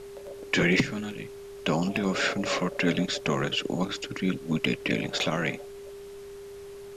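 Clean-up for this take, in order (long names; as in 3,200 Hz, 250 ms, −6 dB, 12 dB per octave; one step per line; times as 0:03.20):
clipped peaks rebuilt −14 dBFS
notch filter 400 Hz, Q 30
broadband denoise 30 dB, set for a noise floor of −43 dBFS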